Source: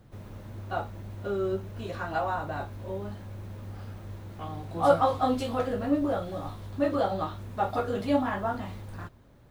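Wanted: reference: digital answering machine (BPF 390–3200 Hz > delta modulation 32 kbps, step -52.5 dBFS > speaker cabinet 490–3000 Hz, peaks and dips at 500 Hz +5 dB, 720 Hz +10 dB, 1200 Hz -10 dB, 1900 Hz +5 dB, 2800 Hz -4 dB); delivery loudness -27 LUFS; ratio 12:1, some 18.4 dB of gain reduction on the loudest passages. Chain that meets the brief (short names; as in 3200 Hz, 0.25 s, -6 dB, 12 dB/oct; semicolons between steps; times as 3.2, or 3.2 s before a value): compressor 12:1, threshold -35 dBFS; BPF 390–3200 Hz; delta modulation 32 kbps, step -52.5 dBFS; speaker cabinet 490–3000 Hz, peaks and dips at 500 Hz +5 dB, 720 Hz +10 dB, 1200 Hz -10 dB, 1900 Hz +5 dB, 2800 Hz -4 dB; gain +14 dB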